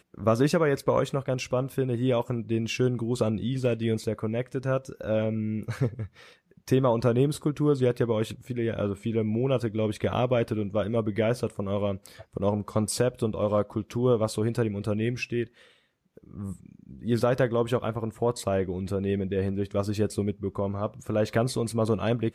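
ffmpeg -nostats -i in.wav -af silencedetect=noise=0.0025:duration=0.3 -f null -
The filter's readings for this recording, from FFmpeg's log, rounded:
silence_start: 15.76
silence_end: 16.17 | silence_duration: 0.41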